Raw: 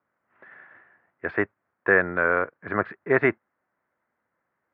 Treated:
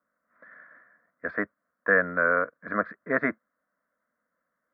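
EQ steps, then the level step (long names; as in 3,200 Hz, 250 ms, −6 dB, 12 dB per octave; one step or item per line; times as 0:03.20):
phaser with its sweep stopped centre 560 Hz, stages 8
0.0 dB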